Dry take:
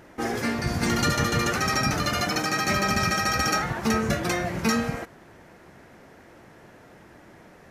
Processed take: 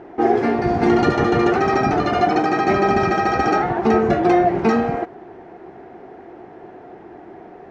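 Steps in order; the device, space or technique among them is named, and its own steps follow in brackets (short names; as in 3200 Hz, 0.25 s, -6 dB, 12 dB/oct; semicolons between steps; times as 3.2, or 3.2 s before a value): inside a cardboard box (LPF 3100 Hz 12 dB/oct; small resonant body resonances 380/720 Hz, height 17 dB, ringing for 25 ms)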